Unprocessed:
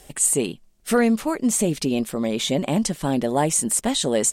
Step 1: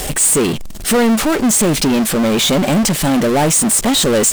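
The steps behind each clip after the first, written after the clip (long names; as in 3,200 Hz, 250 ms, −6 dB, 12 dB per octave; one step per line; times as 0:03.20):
power curve on the samples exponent 0.35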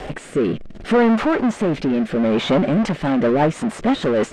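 low-pass filter 2,000 Hz 12 dB per octave
low-shelf EQ 130 Hz −8.5 dB
rotating-speaker cabinet horn 0.65 Hz, later 6.3 Hz, at 0:02.31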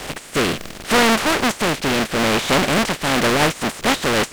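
compressing power law on the bin magnitudes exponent 0.42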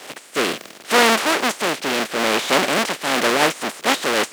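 high-pass filter 290 Hz 12 dB per octave
multiband upward and downward expander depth 40%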